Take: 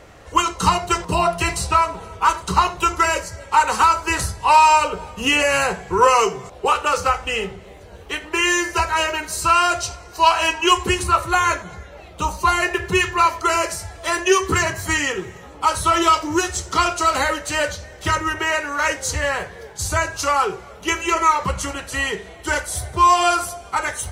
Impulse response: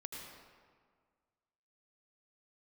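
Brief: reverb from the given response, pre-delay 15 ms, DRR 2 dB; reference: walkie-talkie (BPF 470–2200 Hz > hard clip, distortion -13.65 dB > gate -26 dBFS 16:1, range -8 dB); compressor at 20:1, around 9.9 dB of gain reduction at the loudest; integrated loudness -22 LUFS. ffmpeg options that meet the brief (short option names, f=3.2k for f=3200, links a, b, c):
-filter_complex "[0:a]acompressor=threshold=-19dB:ratio=20,asplit=2[a][b];[1:a]atrim=start_sample=2205,adelay=15[c];[b][c]afir=irnorm=-1:irlink=0,volume=0dB[d];[a][d]amix=inputs=2:normalize=0,highpass=470,lowpass=2.2k,asoftclip=type=hard:threshold=-19.5dB,agate=range=-8dB:threshold=-26dB:ratio=16,volume=4dB"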